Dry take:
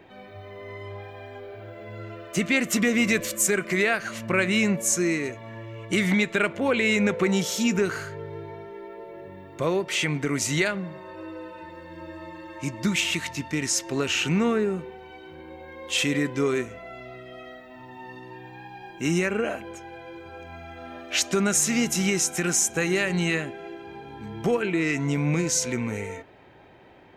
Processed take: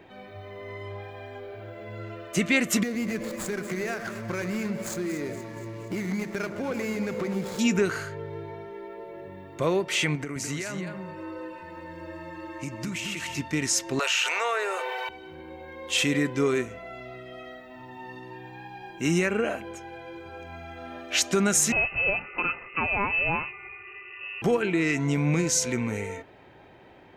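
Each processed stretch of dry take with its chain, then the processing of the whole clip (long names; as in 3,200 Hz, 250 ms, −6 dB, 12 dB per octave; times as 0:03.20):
0:02.83–0:07.59: running median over 15 samples + downward compressor 3 to 1, threshold −29 dBFS + delay that swaps between a low-pass and a high-pass 118 ms, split 1,300 Hz, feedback 76%, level −8.5 dB
0:10.15–0:13.38: parametric band 3,600 Hz −5.5 dB 0.25 octaves + downward compressor 10 to 1, threshold −29 dBFS + single-tap delay 210 ms −6 dB
0:13.99–0:15.09: Butterworth high-pass 560 Hz + notch filter 750 Hz, Q 25 + envelope flattener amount 70%
0:21.72–0:24.42: parametric band 460 Hz −13.5 dB 0.54 octaves + voice inversion scrambler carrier 2,800 Hz
whole clip: no processing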